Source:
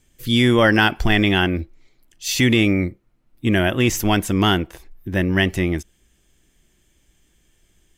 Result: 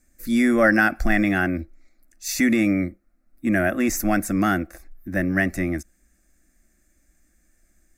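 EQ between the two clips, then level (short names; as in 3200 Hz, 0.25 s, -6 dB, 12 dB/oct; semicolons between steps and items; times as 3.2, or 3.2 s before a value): fixed phaser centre 630 Hz, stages 8; 0.0 dB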